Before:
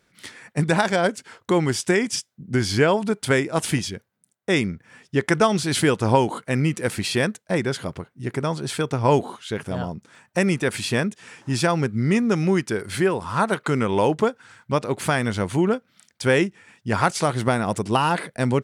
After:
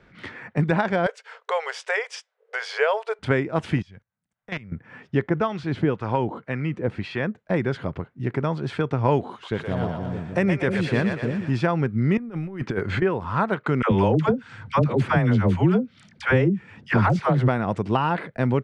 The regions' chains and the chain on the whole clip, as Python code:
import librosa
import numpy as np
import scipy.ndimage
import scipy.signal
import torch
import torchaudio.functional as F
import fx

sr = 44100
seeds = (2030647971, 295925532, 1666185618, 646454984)

y = fx.chain(x, sr, fx.brickwall_highpass(low_hz=420.0),
    fx.high_shelf(hz=3400.0, db=9.5), at=(1.06, 3.19))
y = fx.chain(y, sr, fx.peak_eq(hz=350.0, db=-14.0, octaves=1.2),
    fx.level_steps(step_db=23),
    fx.transformer_sat(knee_hz=2600.0), at=(3.82, 4.72))
y = fx.chain(y, sr, fx.lowpass(hz=3600.0, slope=6),
    fx.harmonic_tremolo(hz=1.9, depth_pct=70, crossover_hz=870.0), at=(5.28, 7.38))
y = fx.chain(y, sr, fx.high_shelf(hz=7400.0, db=10.0),
    fx.echo_split(split_hz=480.0, low_ms=306, high_ms=118, feedback_pct=52, wet_db=-4.5), at=(9.31, 11.51))
y = fx.chain(y, sr, fx.over_compress(threshold_db=-27.0, ratio=-0.5),
    fx.resample_bad(factor=4, down='filtered', up='hold'), at=(12.17, 13.02))
y = fx.chain(y, sr, fx.bass_treble(bass_db=8, treble_db=2),
    fx.dispersion(late='lows', ms=85.0, hz=590.0),
    fx.band_squash(depth_pct=70), at=(13.82, 17.48))
y = scipy.signal.sosfilt(scipy.signal.butter(2, 2400.0, 'lowpass', fs=sr, output='sos'), y)
y = fx.low_shelf(y, sr, hz=77.0, db=9.0)
y = fx.band_squash(y, sr, depth_pct=40)
y = y * librosa.db_to_amplitude(-2.0)